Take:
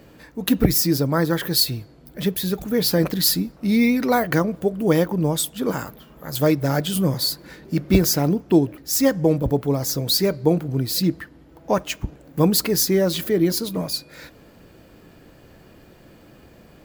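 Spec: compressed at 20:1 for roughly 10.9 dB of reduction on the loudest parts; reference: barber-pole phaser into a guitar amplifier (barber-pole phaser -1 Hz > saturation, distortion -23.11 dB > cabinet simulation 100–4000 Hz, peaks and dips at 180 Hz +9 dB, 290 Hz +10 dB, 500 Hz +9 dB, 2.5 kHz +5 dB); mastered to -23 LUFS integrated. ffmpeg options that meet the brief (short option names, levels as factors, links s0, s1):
-filter_complex "[0:a]acompressor=threshold=0.0891:ratio=20,asplit=2[s0][s1];[s1]afreqshift=-1[s2];[s0][s2]amix=inputs=2:normalize=1,asoftclip=threshold=0.126,highpass=100,equalizer=f=180:t=q:w=4:g=9,equalizer=f=290:t=q:w=4:g=10,equalizer=f=500:t=q:w=4:g=9,equalizer=f=2500:t=q:w=4:g=5,lowpass=f=4000:w=0.5412,lowpass=f=4000:w=1.3066,volume=1.41"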